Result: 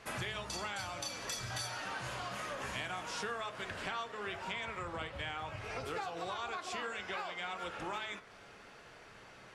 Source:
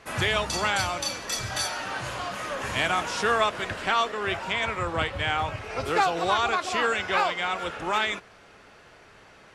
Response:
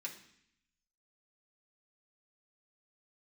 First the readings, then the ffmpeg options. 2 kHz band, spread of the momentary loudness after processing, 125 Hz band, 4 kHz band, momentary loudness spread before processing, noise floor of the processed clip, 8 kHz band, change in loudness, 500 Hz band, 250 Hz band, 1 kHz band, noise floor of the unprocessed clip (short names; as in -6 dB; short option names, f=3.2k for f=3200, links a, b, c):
-13.5 dB, 15 LU, -11.5 dB, -12.5 dB, 8 LU, -56 dBFS, -11.0 dB, -13.5 dB, -14.0 dB, -12.5 dB, -14.5 dB, -53 dBFS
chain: -filter_complex "[0:a]flanger=delay=4.9:depth=2.3:regen=-82:speed=0.41:shape=sinusoidal,acompressor=threshold=-39dB:ratio=6,bandreject=f=54.3:t=h:w=4,bandreject=f=108.6:t=h:w=4,bandreject=f=162.9:t=h:w=4,bandreject=f=217.2:t=h:w=4,bandreject=f=271.5:t=h:w=4,bandreject=f=325.8:t=h:w=4,bandreject=f=380.1:t=h:w=4,bandreject=f=434.4:t=h:w=4,bandreject=f=488.7:t=h:w=4,bandreject=f=543:t=h:w=4,bandreject=f=597.3:t=h:w=4,bandreject=f=651.6:t=h:w=4,bandreject=f=705.9:t=h:w=4,bandreject=f=760.2:t=h:w=4,bandreject=f=814.5:t=h:w=4,bandreject=f=868.8:t=h:w=4,bandreject=f=923.1:t=h:w=4,bandreject=f=977.4:t=h:w=4,bandreject=f=1.0317k:t=h:w=4,bandreject=f=1.086k:t=h:w=4,bandreject=f=1.1403k:t=h:w=4,bandreject=f=1.1946k:t=h:w=4,bandreject=f=1.2489k:t=h:w=4,bandreject=f=1.3032k:t=h:w=4,bandreject=f=1.3575k:t=h:w=4,bandreject=f=1.4118k:t=h:w=4,bandreject=f=1.4661k:t=h:w=4,bandreject=f=1.5204k:t=h:w=4,bandreject=f=1.5747k:t=h:w=4,bandreject=f=1.629k:t=h:w=4,bandreject=f=1.6833k:t=h:w=4,bandreject=f=1.7376k:t=h:w=4,bandreject=f=1.7919k:t=h:w=4,bandreject=f=1.8462k:t=h:w=4,bandreject=f=1.9005k:t=h:w=4,bandreject=f=1.9548k:t=h:w=4,bandreject=f=2.0091k:t=h:w=4,asplit=2[a][b];[b]equalizer=f=120:t=o:w=0.77:g=14.5[c];[1:a]atrim=start_sample=2205,asetrate=26460,aresample=44100[d];[c][d]afir=irnorm=-1:irlink=0,volume=-18.5dB[e];[a][e]amix=inputs=2:normalize=0,volume=1dB"